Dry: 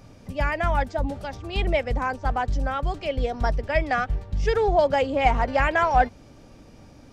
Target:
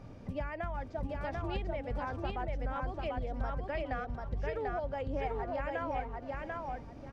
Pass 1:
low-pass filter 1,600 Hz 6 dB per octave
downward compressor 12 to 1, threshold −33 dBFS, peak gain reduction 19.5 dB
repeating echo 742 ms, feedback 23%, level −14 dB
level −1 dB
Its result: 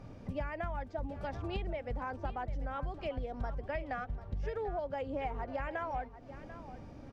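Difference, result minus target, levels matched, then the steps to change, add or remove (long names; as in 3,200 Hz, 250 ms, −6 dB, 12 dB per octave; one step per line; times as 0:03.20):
echo-to-direct −11.5 dB
change: repeating echo 742 ms, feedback 23%, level −2.5 dB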